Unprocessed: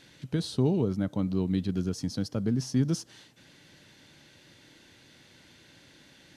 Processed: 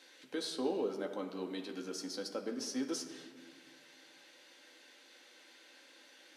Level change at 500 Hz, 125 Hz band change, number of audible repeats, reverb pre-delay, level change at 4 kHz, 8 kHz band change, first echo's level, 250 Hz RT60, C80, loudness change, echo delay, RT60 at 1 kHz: −4.5 dB, −29.0 dB, no echo audible, 4 ms, −2.0 dB, −2.0 dB, no echo audible, 2.4 s, 8.5 dB, −10.0 dB, no echo audible, 1.6 s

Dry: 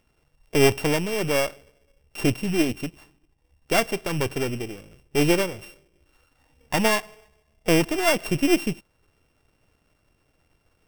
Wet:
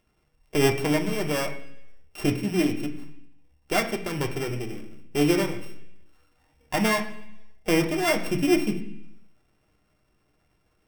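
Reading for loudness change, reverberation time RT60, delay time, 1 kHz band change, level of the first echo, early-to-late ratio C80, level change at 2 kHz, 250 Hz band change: −2.0 dB, 0.70 s, no echo audible, −2.0 dB, no echo audible, 13.0 dB, −2.5 dB, −0.5 dB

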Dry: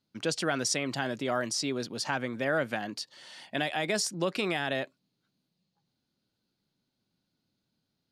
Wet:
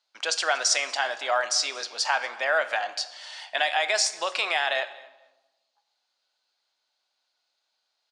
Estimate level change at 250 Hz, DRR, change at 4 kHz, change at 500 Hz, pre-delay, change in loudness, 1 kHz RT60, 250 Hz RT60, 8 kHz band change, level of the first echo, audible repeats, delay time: −19.5 dB, 10.0 dB, +8.0 dB, +1.5 dB, 7 ms, +5.5 dB, 1.1 s, 1.4 s, +7.0 dB, −23.0 dB, 1, 235 ms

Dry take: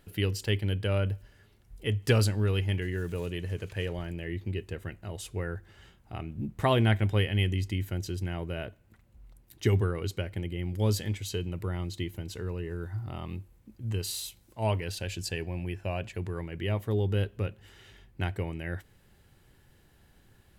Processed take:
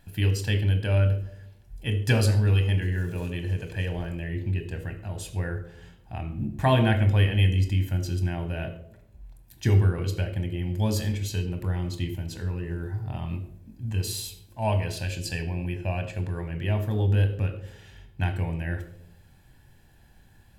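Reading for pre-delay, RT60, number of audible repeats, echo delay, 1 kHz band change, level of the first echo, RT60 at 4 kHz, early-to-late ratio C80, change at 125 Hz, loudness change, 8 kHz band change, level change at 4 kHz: 23 ms, 0.75 s, no echo audible, no echo audible, +3.5 dB, no echo audible, 0.40 s, 13.5 dB, +6.0 dB, +4.5 dB, +2.5 dB, +1.0 dB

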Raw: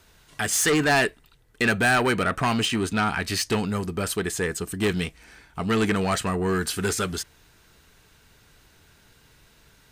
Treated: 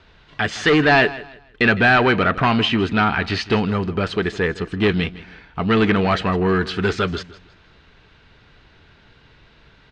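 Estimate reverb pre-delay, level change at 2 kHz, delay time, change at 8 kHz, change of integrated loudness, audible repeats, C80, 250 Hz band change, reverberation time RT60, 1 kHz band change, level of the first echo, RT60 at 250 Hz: no reverb audible, +6.0 dB, 159 ms, below −10 dB, +5.5 dB, 2, no reverb audible, +6.0 dB, no reverb audible, +6.0 dB, −17.5 dB, no reverb audible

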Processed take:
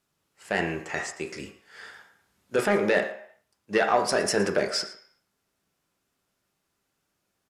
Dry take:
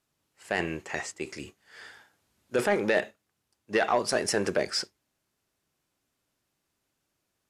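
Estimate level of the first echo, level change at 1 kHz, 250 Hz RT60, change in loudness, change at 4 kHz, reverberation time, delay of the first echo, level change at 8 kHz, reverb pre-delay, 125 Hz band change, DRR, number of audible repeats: −16.5 dB, +3.5 dB, 0.40 s, +2.5 dB, +1.5 dB, 0.60 s, 114 ms, +1.0 dB, 3 ms, +3.0 dB, 3.0 dB, 1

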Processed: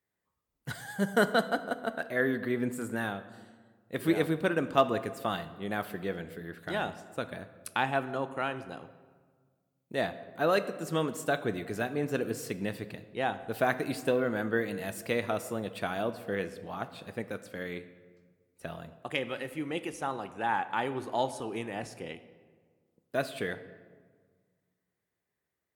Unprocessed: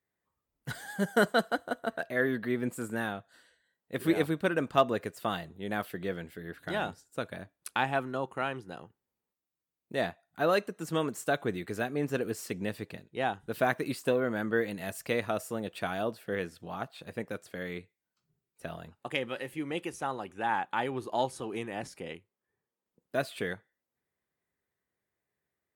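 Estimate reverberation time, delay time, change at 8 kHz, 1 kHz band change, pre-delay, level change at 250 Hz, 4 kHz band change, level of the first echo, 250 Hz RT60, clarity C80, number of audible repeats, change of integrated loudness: 1.6 s, no echo audible, 0.0 dB, +0.5 dB, 16 ms, +0.5 dB, 0.0 dB, no echo audible, 1.9 s, 15.0 dB, no echo audible, 0.0 dB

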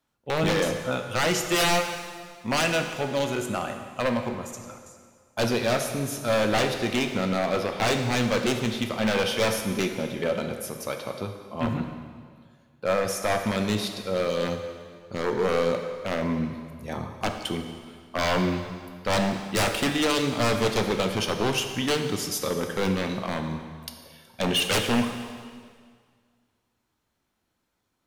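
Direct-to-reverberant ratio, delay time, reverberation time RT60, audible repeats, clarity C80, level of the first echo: 5.0 dB, no echo audible, 1.9 s, no echo audible, 8.0 dB, no echo audible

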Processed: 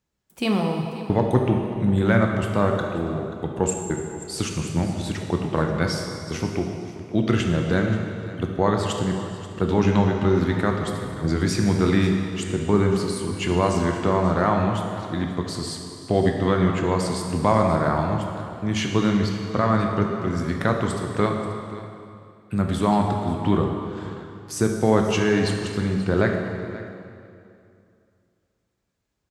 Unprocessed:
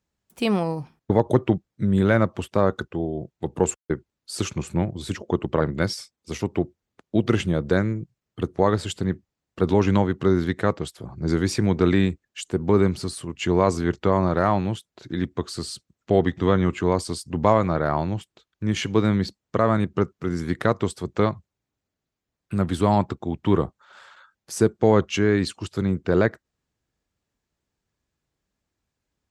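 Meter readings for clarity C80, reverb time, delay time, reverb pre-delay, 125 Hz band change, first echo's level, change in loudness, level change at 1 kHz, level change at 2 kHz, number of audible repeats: 4.5 dB, 2.5 s, 533 ms, 16 ms, +1.5 dB, −16.5 dB, +0.5 dB, +1.5 dB, +2.0 dB, 1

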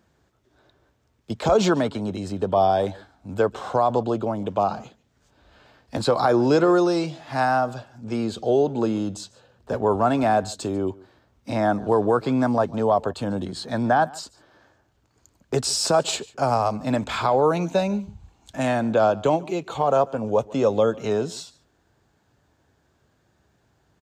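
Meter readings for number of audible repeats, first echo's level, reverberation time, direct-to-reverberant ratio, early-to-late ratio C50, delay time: 1, −22.5 dB, no reverb audible, no reverb audible, no reverb audible, 144 ms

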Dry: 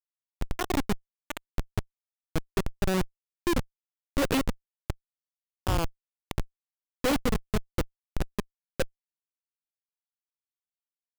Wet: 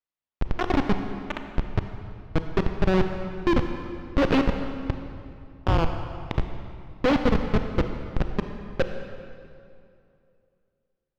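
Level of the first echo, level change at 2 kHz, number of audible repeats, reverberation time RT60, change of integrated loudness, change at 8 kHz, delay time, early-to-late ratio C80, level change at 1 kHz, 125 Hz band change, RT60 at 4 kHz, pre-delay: no echo audible, +4.0 dB, no echo audible, 2.6 s, +5.0 dB, below −10 dB, no echo audible, 7.5 dB, +5.5 dB, +6.0 dB, 1.9 s, 30 ms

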